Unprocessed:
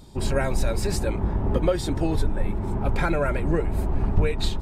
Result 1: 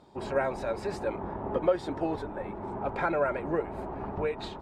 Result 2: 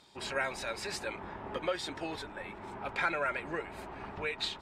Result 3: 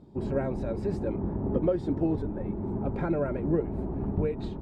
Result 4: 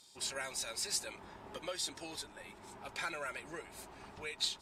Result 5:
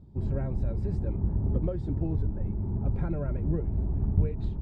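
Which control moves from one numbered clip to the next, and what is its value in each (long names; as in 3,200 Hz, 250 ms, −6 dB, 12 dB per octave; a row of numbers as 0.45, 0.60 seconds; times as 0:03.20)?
resonant band-pass, frequency: 810, 2,300, 270, 6,200, 100 Hertz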